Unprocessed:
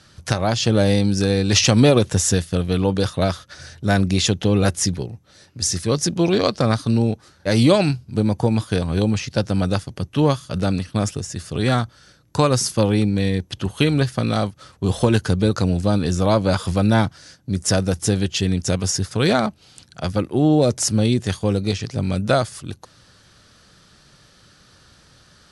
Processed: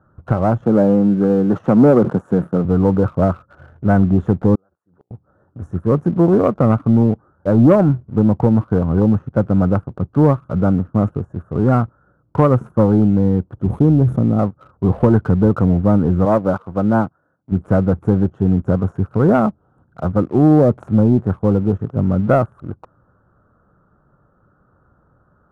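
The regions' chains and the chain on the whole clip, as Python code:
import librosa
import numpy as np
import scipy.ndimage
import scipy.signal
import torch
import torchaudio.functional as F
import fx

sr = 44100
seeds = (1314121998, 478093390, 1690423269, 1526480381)

y = fx.chain(x, sr, fx.highpass(hz=150.0, slope=24),
    fx.sustainer(db_per_s=130.0), at=(0.65, 2.65))
y = fx.chain(y, sr, fx.highpass(hz=1000.0, slope=6),
    fx.gate_flip(shuts_db=-25.0, range_db=-35),
    fx.pre_swell(db_per_s=55.0), at=(4.55, 5.11))
y = fx.chain(y, sr, fx.curve_eq(hz=(310.0, 2400.0, 3400.0), db=(0, -20, 6)),
    fx.sustainer(db_per_s=26.0), at=(13.6, 14.39))
y = fx.chain(y, sr, fx.highpass(hz=200.0, slope=6),
    fx.upward_expand(threshold_db=-32.0, expansion=1.5), at=(16.25, 17.52))
y = scipy.signal.sosfilt(scipy.signal.ellip(4, 1.0, 40, 1400.0, 'lowpass', fs=sr, output='sos'), y)
y = fx.dynamic_eq(y, sr, hz=200.0, q=0.83, threshold_db=-29.0, ratio=4.0, max_db=4)
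y = fx.leveller(y, sr, passes=1)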